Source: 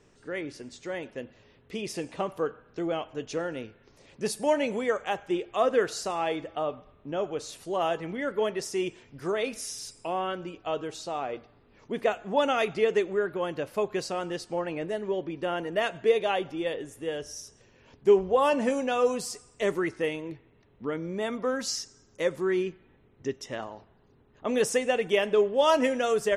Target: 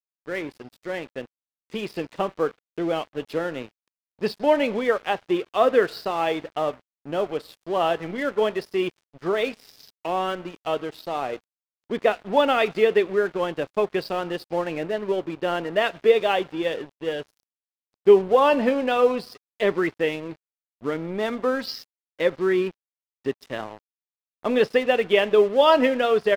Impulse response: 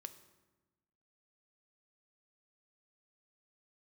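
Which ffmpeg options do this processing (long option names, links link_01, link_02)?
-af "highpass=120,aresample=11025,aresample=44100,aeval=exprs='sgn(val(0))*max(abs(val(0))-0.00531,0)':channel_layout=same,volume=6dB"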